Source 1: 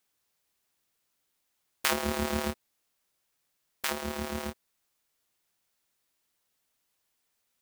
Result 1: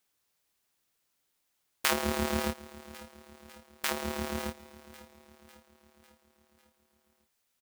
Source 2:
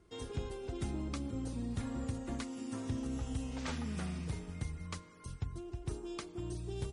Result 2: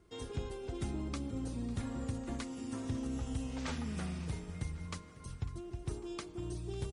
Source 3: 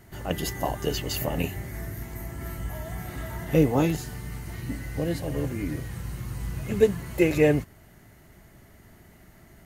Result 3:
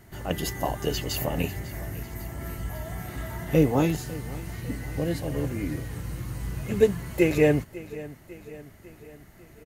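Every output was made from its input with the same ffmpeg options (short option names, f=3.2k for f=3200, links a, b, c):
-af "aecho=1:1:549|1098|1647|2196|2745:0.126|0.0692|0.0381|0.0209|0.0115"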